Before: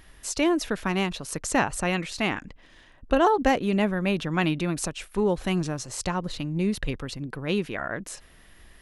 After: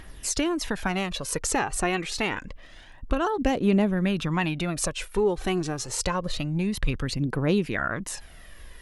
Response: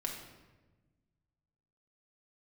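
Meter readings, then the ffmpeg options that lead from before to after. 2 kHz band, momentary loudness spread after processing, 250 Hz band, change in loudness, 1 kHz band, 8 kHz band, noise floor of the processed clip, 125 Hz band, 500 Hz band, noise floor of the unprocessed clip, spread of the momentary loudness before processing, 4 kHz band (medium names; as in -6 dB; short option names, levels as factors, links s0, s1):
-0.5 dB, 5 LU, 0.0 dB, 0.0 dB, -2.5 dB, +3.5 dB, -47 dBFS, +1.5 dB, -1.0 dB, -54 dBFS, 10 LU, +1.0 dB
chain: -af "acompressor=threshold=0.0447:ratio=3,aphaser=in_gain=1:out_gain=1:delay=2.8:decay=0.46:speed=0.27:type=triangular,volume=1.5"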